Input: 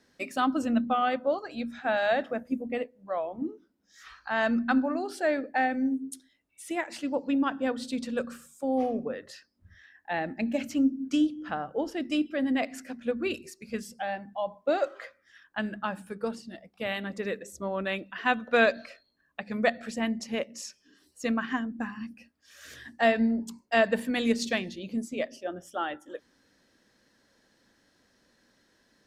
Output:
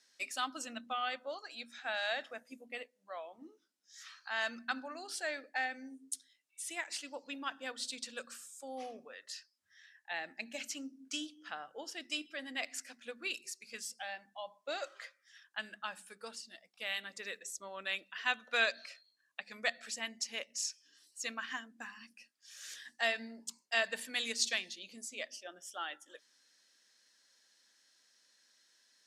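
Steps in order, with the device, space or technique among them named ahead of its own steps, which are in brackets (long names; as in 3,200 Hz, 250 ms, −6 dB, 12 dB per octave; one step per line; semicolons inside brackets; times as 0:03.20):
0:09.05–0:10.11: low-shelf EQ 310 Hz −12 dB
piezo pickup straight into a mixer (low-pass filter 7,800 Hz 12 dB per octave; first difference)
level +6.5 dB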